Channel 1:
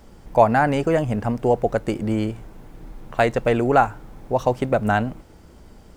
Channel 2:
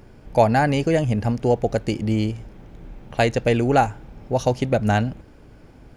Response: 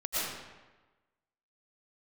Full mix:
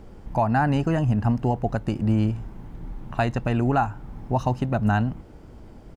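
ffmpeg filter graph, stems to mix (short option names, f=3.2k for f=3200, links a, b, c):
-filter_complex "[0:a]volume=0dB[a];[1:a]equalizer=f=1.4k:t=o:w=0.99:g=-12,adelay=0.6,volume=-1.5dB[b];[a][b]amix=inputs=2:normalize=0,highshelf=f=3k:g=-10,alimiter=limit=-11.5dB:level=0:latency=1:release=325"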